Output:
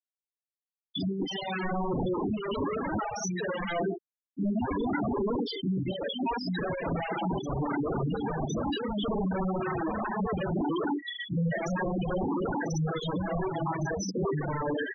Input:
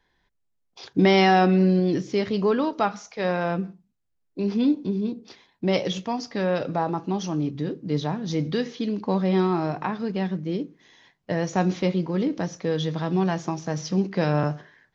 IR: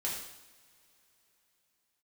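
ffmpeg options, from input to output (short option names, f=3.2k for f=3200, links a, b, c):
-filter_complex "[0:a]equalizer=f=3k:t=o:w=0.26:g=7,areverse,acompressor=threshold=-32dB:ratio=20,areverse,acrossover=split=260|940[a][b][c];[c]adelay=180[d];[b]adelay=230[e];[a][e][d]amix=inputs=3:normalize=0[f];[1:a]atrim=start_sample=2205,afade=t=out:st=0.15:d=0.01,atrim=end_sample=7056,asetrate=74970,aresample=44100[g];[f][g]afir=irnorm=-1:irlink=0,asplit=2[h][i];[i]aeval=exprs='0.0473*sin(PI/2*8.91*val(0)/0.0473)':c=same,volume=-5dB[j];[h][j]amix=inputs=2:normalize=0,afftfilt=real='re*gte(hypot(re,im),0.0562)':imag='im*gte(hypot(re,im),0.0562)':win_size=1024:overlap=0.75,volume=5.5dB"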